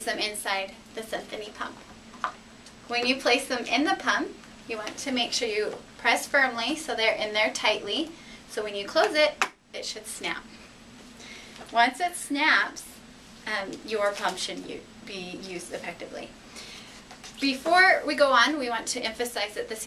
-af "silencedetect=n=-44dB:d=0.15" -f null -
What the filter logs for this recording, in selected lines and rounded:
silence_start: 9.52
silence_end: 9.74 | silence_duration: 0.22